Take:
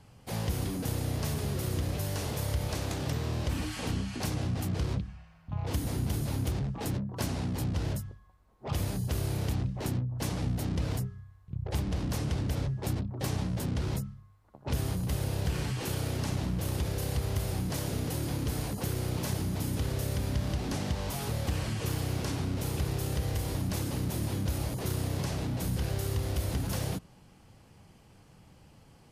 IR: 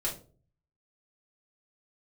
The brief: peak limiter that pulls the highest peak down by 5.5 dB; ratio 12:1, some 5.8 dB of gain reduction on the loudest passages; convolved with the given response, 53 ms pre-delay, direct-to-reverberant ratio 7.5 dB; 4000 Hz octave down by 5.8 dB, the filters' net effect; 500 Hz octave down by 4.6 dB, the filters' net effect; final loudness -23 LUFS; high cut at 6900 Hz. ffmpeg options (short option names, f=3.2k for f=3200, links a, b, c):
-filter_complex "[0:a]lowpass=6.9k,equalizer=f=500:t=o:g=-6,equalizer=f=4k:t=o:g=-7,acompressor=threshold=-32dB:ratio=12,alimiter=level_in=5.5dB:limit=-24dB:level=0:latency=1,volume=-5.5dB,asplit=2[a][b];[1:a]atrim=start_sample=2205,adelay=53[c];[b][c]afir=irnorm=-1:irlink=0,volume=-12dB[d];[a][d]amix=inputs=2:normalize=0,volume=15dB"